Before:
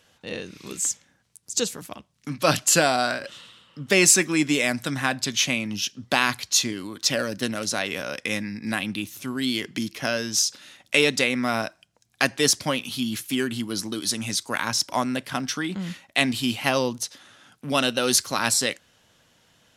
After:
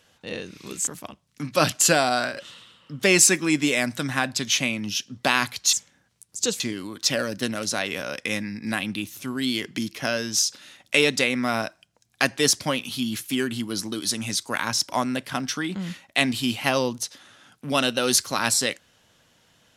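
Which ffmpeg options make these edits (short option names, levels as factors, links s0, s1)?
-filter_complex "[0:a]asplit=4[s0][s1][s2][s3];[s0]atrim=end=0.872[s4];[s1]atrim=start=1.738:end=6.602[s5];[s2]atrim=start=0.868:end=1.742[s6];[s3]atrim=start=6.598[s7];[s4][s5]acrossfade=d=0.004:c1=hsin:c2=hsin[s8];[s8][s6]acrossfade=d=0.004:c1=hsin:c2=hsin[s9];[s9][s7]acrossfade=d=0.004:c1=hsin:c2=hsin"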